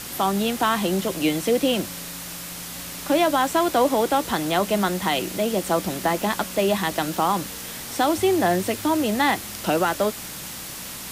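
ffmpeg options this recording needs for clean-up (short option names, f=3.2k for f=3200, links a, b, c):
-af "bandreject=f=61.5:t=h:w=4,bandreject=f=123:t=h:w=4,bandreject=f=184.5:t=h:w=4,bandreject=f=246:t=h:w=4,bandreject=f=307.5:t=h:w=4,afwtdn=0.02"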